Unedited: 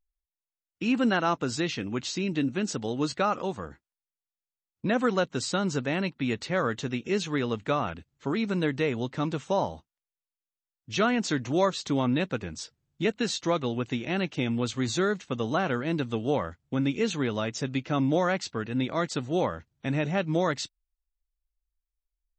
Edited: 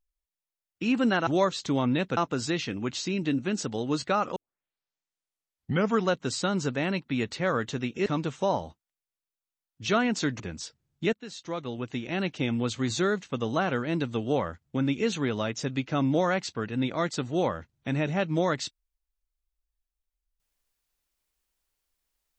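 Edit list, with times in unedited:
0:03.46: tape start 1.74 s
0:07.16–0:09.14: remove
0:11.48–0:12.38: move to 0:01.27
0:13.11–0:14.31: fade in, from −18 dB

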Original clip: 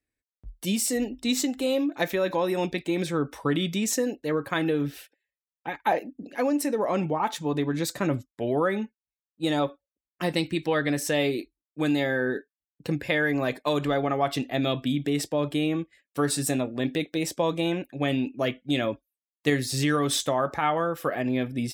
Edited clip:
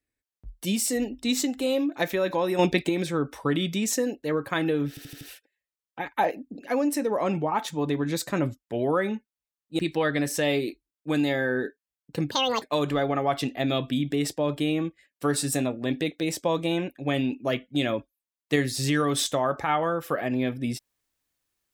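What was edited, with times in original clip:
0:02.59–0:02.89: clip gain +6.5 dB
0:04.89: stutter 0.08 s, 5 plays
0:09.47–0:10.50: remove
0:13.02–0:13.56: play speed 175%

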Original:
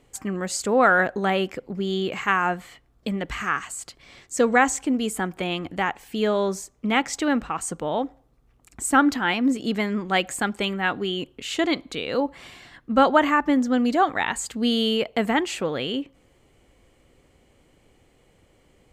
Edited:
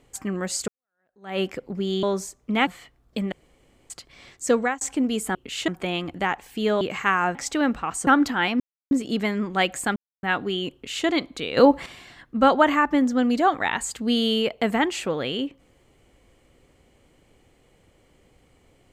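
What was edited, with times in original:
0:00.68–0:01.39: fade in exponential
0:02.03–0:02.57: swap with 0:06.38–0:07.02
0:03.22–0:03.80: fill with room tone
0:04.43–0:04.71: fade out
0:07.74–0:08.93: remove
0:09.46: splice in silence 0.31 s
0:10.51–0:10.78: silence
0:11.28–0:11.61: duplicate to 0:05.25
0:12.12–0:12.41: clip gain +9 dB

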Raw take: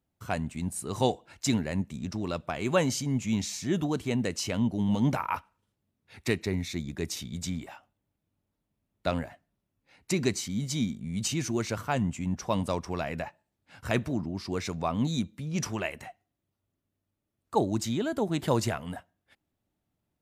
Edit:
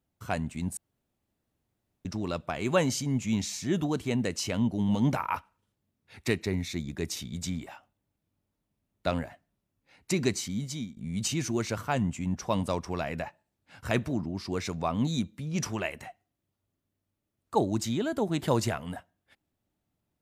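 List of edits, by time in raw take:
0:00.77–0:02.05: fill with room tone
0:10.49–0:10.97: fade out, to −16 dB

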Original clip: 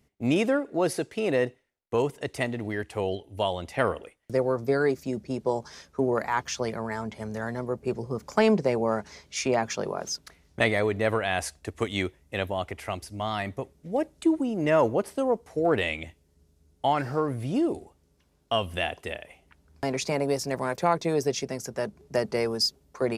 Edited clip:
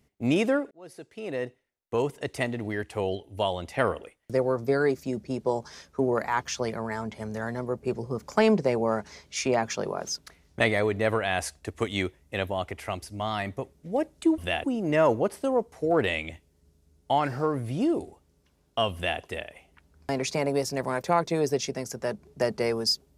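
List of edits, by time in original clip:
0:00.71–0:02.20: fade in
0:18.68–0:18.94: duplicate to 0:14.38

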